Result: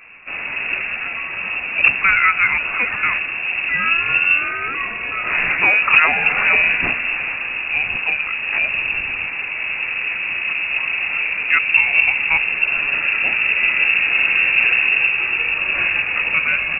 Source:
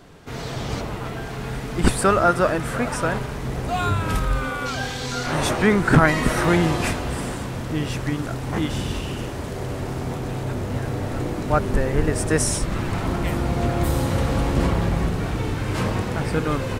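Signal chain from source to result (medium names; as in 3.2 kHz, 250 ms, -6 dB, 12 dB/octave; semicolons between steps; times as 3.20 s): dynamic bell 1.7 kHz, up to -3 dB, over -38 dBFS; in parallel at 0 dB: peak limiter -10.5 dBFS, peak gain reduction 7 dB; on the sum: frequency inversion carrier 2.7 kHz; trim -2 dB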